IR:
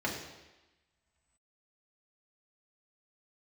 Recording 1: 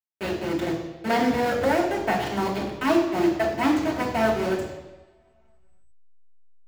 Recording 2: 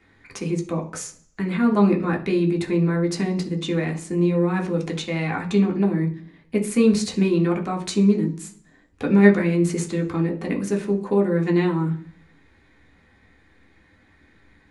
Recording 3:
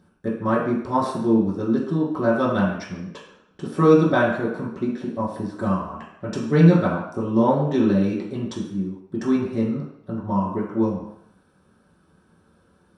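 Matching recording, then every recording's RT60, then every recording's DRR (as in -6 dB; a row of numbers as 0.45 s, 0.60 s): 1; 1.1 s, 0.45 s, 0.70 s; -3.5 dB, 0.0 dB, -8.5 dB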